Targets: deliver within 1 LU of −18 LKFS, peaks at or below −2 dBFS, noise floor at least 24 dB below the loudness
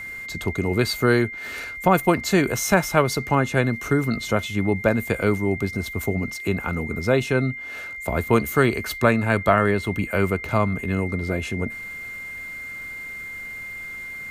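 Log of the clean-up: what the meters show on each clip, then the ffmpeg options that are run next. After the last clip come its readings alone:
interfering tone 2,100 Hz; level of the tone −32 dBFS; integrated loudness −23.0 LKFS; sample peak −4.0 dBFS; target loudness −18.0 LKFS
→ -af "bandreject=frequency=2100:width=30"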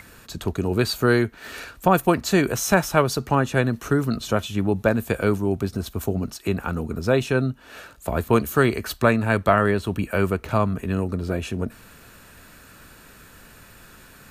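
interfering tone none found; integrated loudness −22.5 LKFS; sample peak −4.0 dBFS; target loudness −18.0 LKFS
→ -af "volume=4.5dB,alimiter=limit=-2dB:level=0:latency=1"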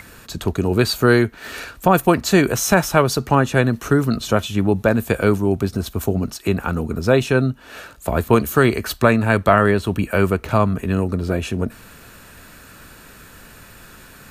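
integrated loudness −18.5 LKFS; sample peak −2.0 dBFS; background noise floor −44 dBFS

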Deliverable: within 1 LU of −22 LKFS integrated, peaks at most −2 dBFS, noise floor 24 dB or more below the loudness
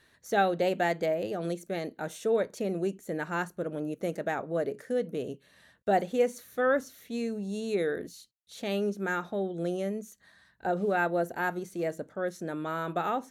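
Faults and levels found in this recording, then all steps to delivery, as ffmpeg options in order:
integrated loudness −31.5 LKFS; sample peak −14.5 dBFS; target loudness −22.0 LKFS
→ -af "volume=9.5dB"

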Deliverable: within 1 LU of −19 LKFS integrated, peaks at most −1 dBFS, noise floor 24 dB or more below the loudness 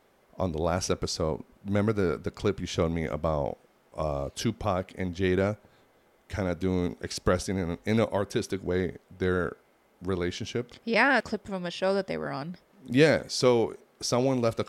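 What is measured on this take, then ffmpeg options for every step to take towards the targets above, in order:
integrated loudness −28.5 LKFS; sample peak −7.0 dBFS; target loudness −19.0 LKFS
→ -af "volume=9.5dB,alimiter=limit=-1dB:level=0:latency=1"

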